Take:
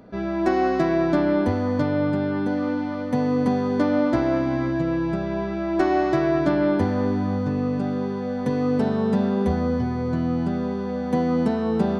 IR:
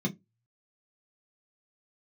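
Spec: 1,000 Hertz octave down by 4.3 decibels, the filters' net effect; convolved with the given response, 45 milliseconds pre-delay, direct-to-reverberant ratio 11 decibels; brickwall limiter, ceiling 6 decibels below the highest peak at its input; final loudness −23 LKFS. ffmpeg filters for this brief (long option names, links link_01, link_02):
-filter_complex "[0:a]equalizer=frequency=1000:width_type=o:gain=-6.5,alimiter=limit=-16dB:level=0:latency=1,asplit=2[link_01][link_02];[1:a]atrim=start_sample=2205,adelay=45[link_03];[link_02][link_03]afir=irnorm=-1:irlink=0,volume=-15.5dB[link_04];[link_01][link_04]amix=inputs=2:normalize=0,volume=-1.5dB"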